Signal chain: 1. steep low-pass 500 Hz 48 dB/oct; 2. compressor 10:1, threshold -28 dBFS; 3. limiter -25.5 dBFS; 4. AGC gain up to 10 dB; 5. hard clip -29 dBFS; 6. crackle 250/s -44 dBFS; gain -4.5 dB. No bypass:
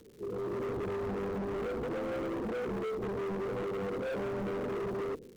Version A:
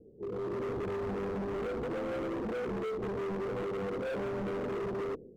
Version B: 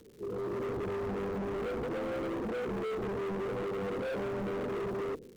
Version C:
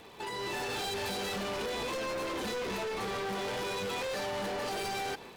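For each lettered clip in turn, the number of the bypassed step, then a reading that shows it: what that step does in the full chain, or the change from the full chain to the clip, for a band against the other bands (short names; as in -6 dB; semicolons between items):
6, crest factor change -2.5 dB; 2, mean gain reduction 3.5 dB; 1, 4 kHz band +19.5 dB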